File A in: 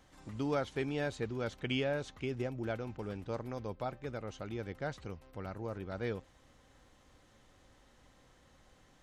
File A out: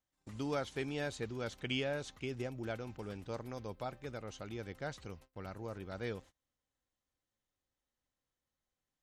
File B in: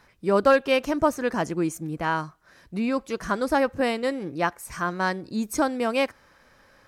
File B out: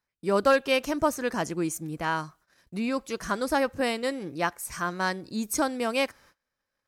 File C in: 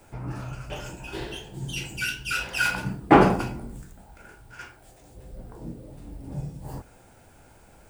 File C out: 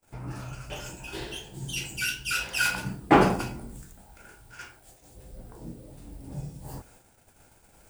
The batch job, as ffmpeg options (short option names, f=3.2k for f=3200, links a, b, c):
-af "agate=range=-26dB:threshold=-52dB:ratio=16:detection=peak,highshelf=f=3.3k:g=8,volume=-3.5dB"